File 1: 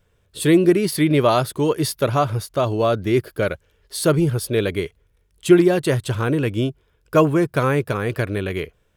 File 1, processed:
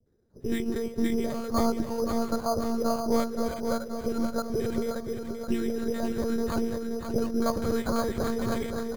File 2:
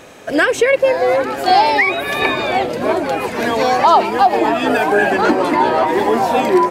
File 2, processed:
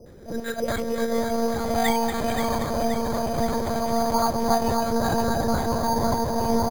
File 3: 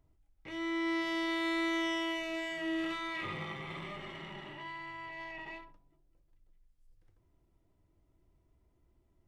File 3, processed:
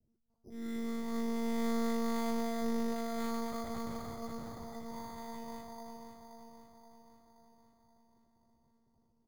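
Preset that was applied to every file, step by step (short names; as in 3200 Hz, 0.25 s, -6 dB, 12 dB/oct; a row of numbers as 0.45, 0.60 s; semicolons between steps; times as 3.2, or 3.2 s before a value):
Wiener smoothing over 9 samples; compressor 2.5:1, threshold -26 dBFS; three-band isolator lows -14 dB, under 360 Hz, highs -16 dB, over 2000 Hz; three bands offset in time lows, highs, mids 60/300 ms, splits 500/1600 Hz; monotone LPC vocoder at 8 kHz 230 Hz; feedback echo 0.526 s, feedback 57%, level -7 dB; low-pass opened by the level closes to 1300 Hz, open at -25.5 dBFS; careless resampling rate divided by 8×, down filtered, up hold; bell 130 Hz +9.5 dB 2.9 oct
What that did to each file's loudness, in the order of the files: -10.0, -9.5, -2.0 LU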